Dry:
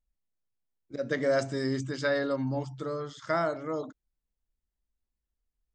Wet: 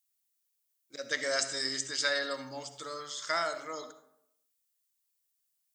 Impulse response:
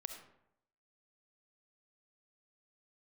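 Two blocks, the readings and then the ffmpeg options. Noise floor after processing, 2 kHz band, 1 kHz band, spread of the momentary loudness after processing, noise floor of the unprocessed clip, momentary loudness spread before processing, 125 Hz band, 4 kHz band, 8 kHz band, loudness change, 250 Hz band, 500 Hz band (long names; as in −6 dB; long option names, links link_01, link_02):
−79 dBFS, +1.5 dB, −2.0 dB, 13 LU, below −85 dBFS, 10 LU, −20.0 dB, +10.0 dB, +13.0 dB, −2.0 dB, −14.0 dB, −8.0 dB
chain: -filter_complex "[0:a]aderivative,asplit=2[link_01][link_02];[1:a]atrim=start_sample=2205[link_03];[link_02][link_03]afir=irnorm=-1:irlink=0,volume=6dB[link_04];[link_01][link_04]amix=inputs=2:normalize=0,volume=6.5dB"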